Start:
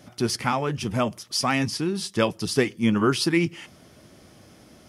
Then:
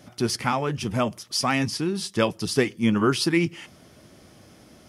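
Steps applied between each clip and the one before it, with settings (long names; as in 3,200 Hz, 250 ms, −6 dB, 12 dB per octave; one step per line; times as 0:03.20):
no processing that can be heard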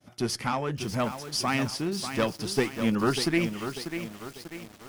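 downward expander −46 dBFS
harmonic generator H 2 −9 dB, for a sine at −6 dBFS
feedback echo at a low word length 593 ms, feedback 55%, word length 6 bits, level −8 dB
level −4 dB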